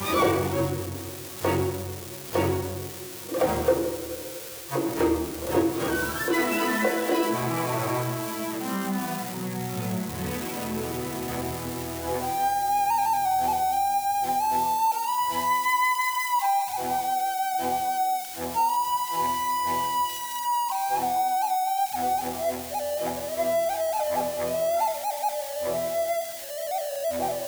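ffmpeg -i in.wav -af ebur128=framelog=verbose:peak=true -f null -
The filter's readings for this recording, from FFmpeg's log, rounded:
Integrated loudness:
  I:         -26.5 LUFS
  Threshold: -36.4 LUFS
Loudness range:
  LRA:         4.8 LU
  Threshold: -46.3 LUFS
  LRA low:   -29.0 LUFS
  LRA high:  -24.2 LUFS
True peak:
  Peak:      -12.0 dBFS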